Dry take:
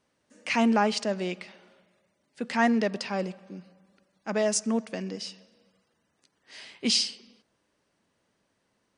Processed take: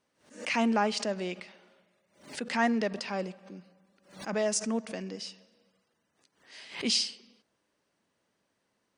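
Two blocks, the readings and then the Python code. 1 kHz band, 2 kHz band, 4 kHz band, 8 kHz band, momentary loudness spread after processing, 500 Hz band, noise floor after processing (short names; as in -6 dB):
-3.0 dB, -2.5 dB, -2.5 dB, -2.5 dB, 17 LU, -3.0 dB, -78 dBFS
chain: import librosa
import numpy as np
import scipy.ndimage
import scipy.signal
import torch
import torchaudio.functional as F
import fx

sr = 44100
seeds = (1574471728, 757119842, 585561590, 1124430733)

y = fx.low_shelf(x, sr, hz=110.0, db=-7.0)
y = fx.pre_swell(y, sr, db_per_s=130.0)
y = F.gain(torch.from_numpy(y), -3.0).numpy()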